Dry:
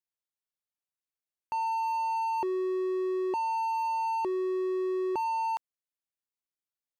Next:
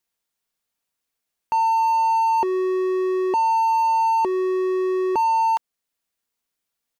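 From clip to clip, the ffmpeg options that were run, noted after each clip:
ffmpeg -i in.wav -filter_complex "[0:a]aecho=1:1:4.3:0.3,asplit=2[link_01][link_02];[link_02]alimiter=level_in=7dB:limit=-24dB:level=0:latency=1:release=398,volume=-7dB,volume=0.5dB[link_03];[link_01][link_03]amix=inputs=2:normalize=0,volume=6dB" out.wav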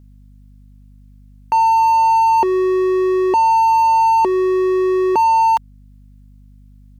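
ffmpeg -i in.wav -af "aeval=exprs='val(0)+0.00355*(sin(2*PI*50*n/s)+sin(2*PI*2*50*n/s)/2+sin(2*PI*3*50*n/s)/3+sin(2*PI*4*50*n/s)/4+sin(2*PI*5*50*n/s)/5)':channel_layout=same,volume=6dB" out.wav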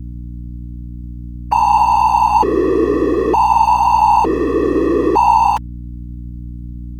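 ffmpeg -i in.wav -af "aeval=exprs='0.422*(cos(1*acos(clip(val(0)/0.422,-1,1)))-cos(1*PI/2))+0.00299*(cos(6*acos(clip(val(0)/0.422,-1,1)))-cos(6*PI/2))':channel_layout=same,afftfilt=real='hypot(re,im)*cos(2*PI*random(0))':imag='hypot(re,im)*sin(2*PI*random(1))':win_size=512:overlap=0.75,aeval=exprs='val(0)+0.02*(sin(2*PI*60*n/s)+sin(2*PI*2*60*n/s)/2+sin(2*PI*3*60*n/s)/3+sin(2*PI*4*60*n/s)/4+sin(2*PI*5*60*n/s)/5)':channel_layout=same,volume=7dB" out.wav

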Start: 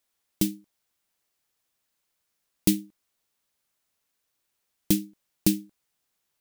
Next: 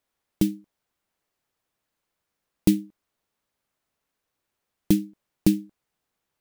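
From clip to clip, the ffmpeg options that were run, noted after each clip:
ffmpeg -i in.wav -af "highshelf=frequency=2500:gain=-11,volume=4dB" out.wav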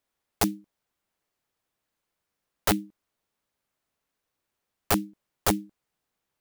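ffmpeg -i in.wav -af "aeval=exprs='(mod(4.73*val(0)+1,2)-1)/4.73':channel_layout=same,volume=-1.5dB" out.wav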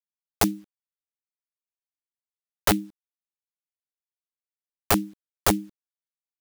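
ffmpeg -i in.wav -filter_complex "[0:a]asplit=2[link_01][link_02];[link_02]acompressor=threshold=-30dB:ratio=8,volume=1dB[link_03];[link_01][link_03]amix=inputs=2:normalize=0,acrusher=bits=9:mix=0:aa=0.000001" out.wav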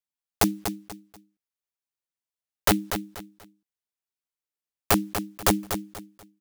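ffmpeg -i in.wav -af "aecho=1:1:242|484|726:0.376|0.105|0.0295" out.wav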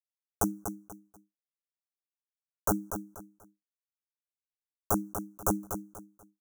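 ffmpeg -i in.wav -af "asuperstop=centerf=3000:order=20:qfactor=0.7,agate=range=-33dB:threshold=-53dB:ratio=3:detection=peak,volume=-6.5dB" out.wav

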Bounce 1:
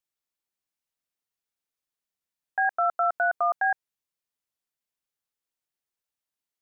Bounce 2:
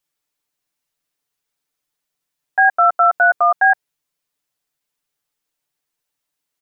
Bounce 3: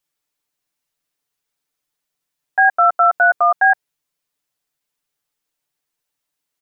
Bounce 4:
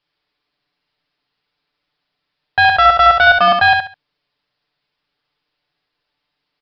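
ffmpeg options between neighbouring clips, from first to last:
ffmpeg -i in.wav -af "aecho=1:1:6.8:0.73,volume=8dB" out.wav
ffmpeg -i in.wav -af anull out.wav
ffmpeg -i in.wav -af "asoftclip=type=tanh:threshold=-17dB,aecho=1:1:69|138|207:0.562|0.135|0.0324,aresample=11025,aresample=44100,volume=9dB" out.wav

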